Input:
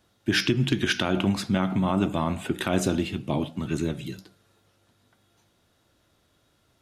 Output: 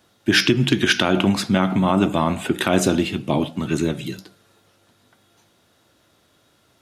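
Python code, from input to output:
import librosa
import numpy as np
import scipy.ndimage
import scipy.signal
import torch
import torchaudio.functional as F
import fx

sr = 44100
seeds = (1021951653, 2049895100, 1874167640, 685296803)

y = fx.highpass(x, sr, hz=150.0, slope=6)
y = y * 10.0 ** (7.5 / 20.0)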